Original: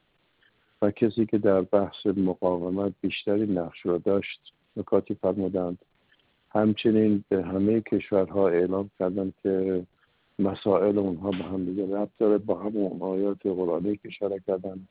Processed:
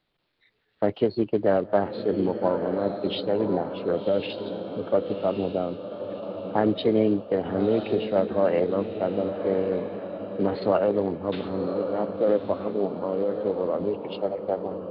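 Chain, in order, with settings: echo that smears into a reverb 1108 ms, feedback 44%, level -8 dB; formant shift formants +3 st; spectral noise reduction 7 dB

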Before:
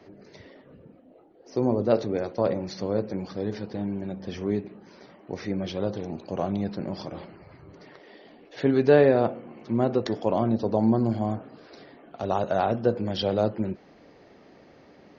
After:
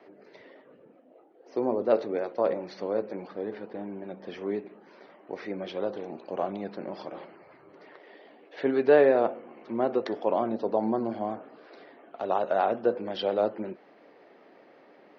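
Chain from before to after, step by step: band-pass 350–2900 Hz; 3.27–4.09 s: distance through air 200 m; vibrato 5.5 Hz 31 cents

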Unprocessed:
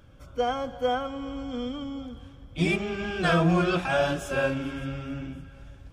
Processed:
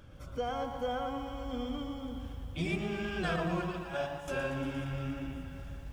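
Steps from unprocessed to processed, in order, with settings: 3.36–4.28 s: gate -22 dBFS, range -18 dB; compression 2:1, threshold -39 dBFS, peak gain reduction 11.5 dB; filtered feedback delay 118 ms, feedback 49%, low-pass 1.9 kHz, level -4.5 dB; bit-crushed delay 117 ms, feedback 80%, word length 10-bit, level -11.5 dB

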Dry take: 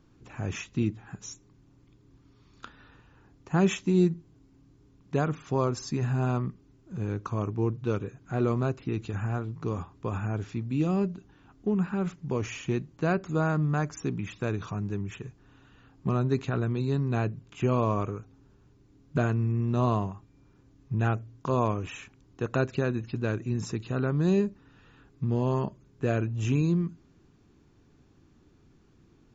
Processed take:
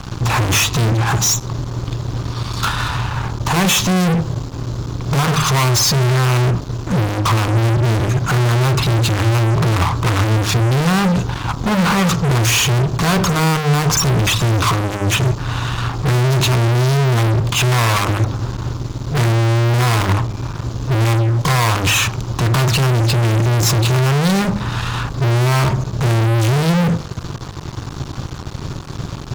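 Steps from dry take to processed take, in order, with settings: graphic EQ 125/250/500/1000/2000/4000 Hz +9/-10/-9/+10/-8/+6 dB; fuzz box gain 51 dB, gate -60 dBFS; de-hum 51.16 Hz, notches 27

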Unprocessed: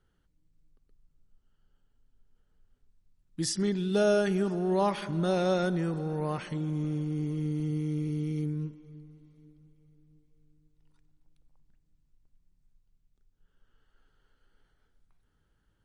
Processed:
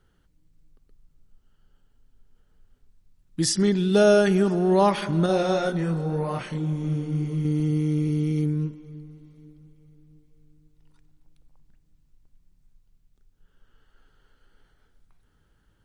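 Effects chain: 5.26–7.45 s: chorus voices 6, 1.1 Hz, delay 28 ms, depth 4.1 ms; trim +7.5 dB

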